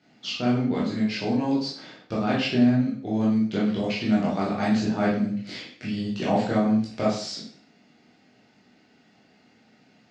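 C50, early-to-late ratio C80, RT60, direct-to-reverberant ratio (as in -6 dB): 3.5 dB, 8.0 dB, 0.50 s, -7.0 dB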